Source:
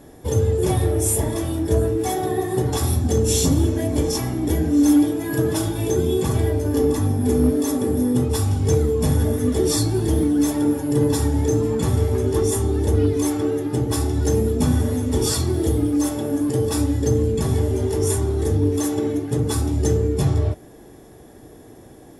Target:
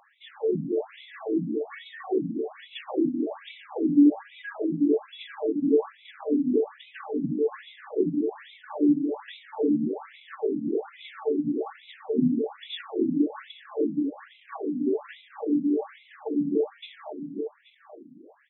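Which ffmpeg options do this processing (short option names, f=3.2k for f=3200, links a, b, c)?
-filter_complex "[0:a]asplit=2[a][b];[b]adelay=991.3,volume=-7dB,highshelf=f=4k:g=-22.3[c];[a][c]amix=inputs=2:normalize=0,atempo=1.2,afftfilt=real='re*between(b*sr/1024,210*pow(2900/210,0.5+0.5*sin(2*PI*1.2*pts/sr))/1.41,210*pow(2900/210,0.5+0.5*sin(2*PI*1.2*pts/sr))*1.41)':imag='im*between(b*sr/1024,210*pow(2900/210,0.5+0.5*sin(2*PI*1.2*pts/sr))/1.41,210*pow(2900/210,0.5+0.5*sin(2*PI*1.2*pts/sr))*1.41)':win_size=1024:overlap=0.75"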